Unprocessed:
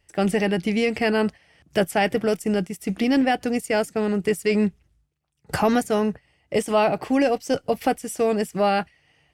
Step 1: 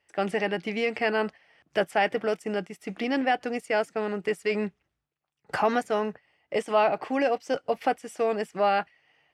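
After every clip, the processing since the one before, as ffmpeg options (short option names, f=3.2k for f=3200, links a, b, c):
-af "bandpass=f=1.2k:t=q:w=0.51:csg=0,volume=-1dB"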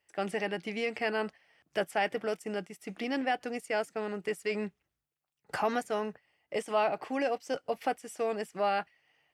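-af "highshelf=f=7k:g=9.5,volume=-6dB"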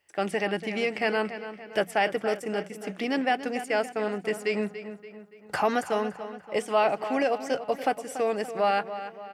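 -filter_complex "[0:a]bandreject=f=60:t=h:w=6,bandreject=f=120:t=h:w=6,bandreject=f=180:t=h:w=6,asplit=2[a][b];[b]adelay=286,lowpass=f=4.3k:p=1,volume=-11.5dB,asplit=2[c][d];[d]adelay=286,lowpass=f=4.3k:p=1,volume=0.49,asplit=2[e][f];[f]adelay=286,lowpass=f=4.3k:p=1,volume=0.49,asplit=2[g][h];[h]adelay=286,lowpass=f=4.3k:p=1,volume=0.49,asplit=2[i][j];[j]adelay=286,lowpass=f=4.3k:p=1,volume=0.49[k];[c][e][g][i][k]amix=inputs=5:normalize=0[l];[a][l]amix=inputs=2:normalize=0,volume=5dB"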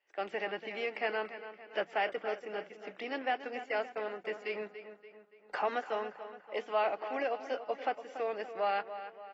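-filter_complex "[0:a]acrossover=split=320 4300:gain=0.0708 1 0.141[a][b][c];[a][b][c]amix=inputs=3:normalize=0,volume=-7dB" -ar 32000 -c:a aac -b:a 24k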